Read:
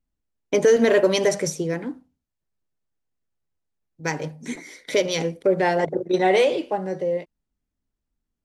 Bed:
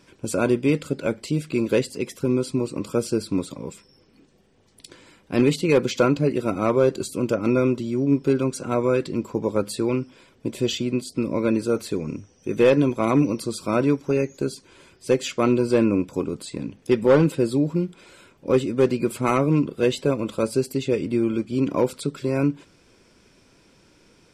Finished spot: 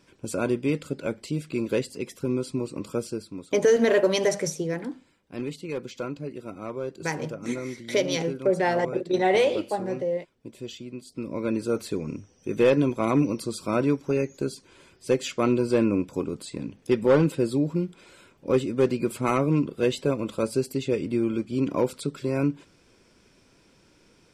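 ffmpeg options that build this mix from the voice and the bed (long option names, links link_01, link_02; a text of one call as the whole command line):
ffmpeg -i stem1.wav -i stem2.wav -filter_complex "[0:a]adelay=3000,volume=-3dB[link_01];[1:a]volume=6dB,afade=type=out:start_time=2.93:duration=0.4:silence=0.354813,afade=type=in:start_time=10.97:duration=0.82:silence=0.281838[link_02];[link_01][link_02]amix=inputs=2:normalize=0" out.wav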